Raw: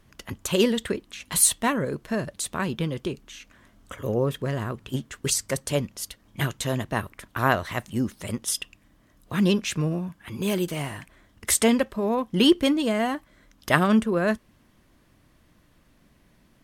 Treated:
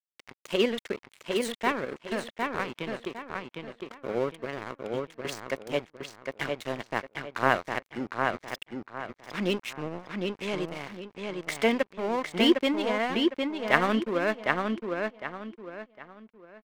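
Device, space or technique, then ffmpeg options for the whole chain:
pocket radio on a weak battery: -filter_complex "[0:a]highpass=280,lowpass=3.7k,aeval=exprs='sgn(val(0))*max(abs(val(0))-0.0178,0)':c=same,equalizer=f=2.2k:t=o:w=0.21:g=5.5,asettb=1/sr,asplit=3[a][b][c];[a]atrim=end=9.784[d];[b]atrim=start=9.78:end=10.63,asetpts=PTS-STARTPTS,afade=t=in:d=0.004:c=qsin,afade=t=out:st=0.846:d=0.004:c=qsin,lowpass=9.8k[e];[c]atrim=start=10.626[f];[d][e]acrossfade=d=0.004:c1=hsin:c2=qsin[g];[g][f]acrossfade=d=0.004:c1=qsin:c2=hsin,asplit=2[h][i];[i]adelay=757,lowpass=f=4.7k:p=1,volume=-3.5dB,asplit=2[j][k];[k]adelay=757,lowpass=f=4.7k:p=1,volume=0.32,asplit=2[l][m];[m]adelay=757,lowpass=f=4.7k:p=1,volume=0.32,asplit=2[n][o];[o]adelay=757,lowpass=f=4.7k:p=1,volume=0.32[p];[h][j][l][n][p]amix=inputs=5:normalize=0,volume=-1dB"

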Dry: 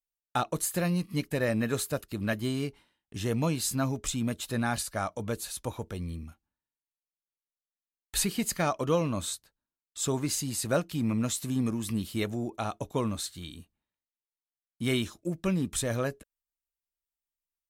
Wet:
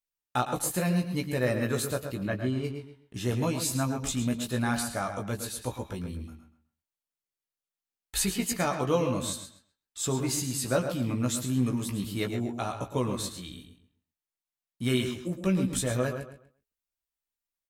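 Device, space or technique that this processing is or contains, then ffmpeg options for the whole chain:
slapback doubling: -filter_complex "[0:a]asplit=3[a][b][c];[a]afade=t=out:st=2.23:d=0.02[d];[b]lowpass=f=1.5k:p=1,afade=t=in:st=2.23:d=0.02,afade=t=out:st=2.63:d=0.02[e];[c]afade=t=in:st=2.63:d=0.02[f];[d][e][f]amix=inputs=3:normalize=0,asplit=3[g][h][i];[h]adelay=16,volume=-5dB[j];[i]adelay=110,volume=-11dB[k];[g][j][k]amix=inputs=3:normalize=0,asplit=2[l][m];[m]adelay=131,lowpass=f=3.7k:p=1,volume=-8.5dB,asplit=2[n][o];[o]adelay=131,lowpass=f=3.7k:p=1,volume=0.24,asplit=2[p][q];[q]adelay=131,lowpass=f=3.7k:p=1,volume=0.24[r];[l][n][p][r]amix=inputs=4:normalize=0,volume=-1dB"

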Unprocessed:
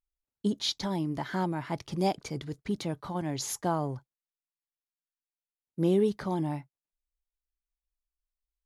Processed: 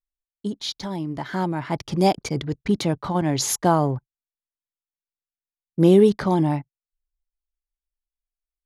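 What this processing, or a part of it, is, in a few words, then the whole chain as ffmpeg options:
voice memo with heavy noise removal: -af "anlmdn=0.0158,dynaudnorm=f=250:g=13:m=11dB"

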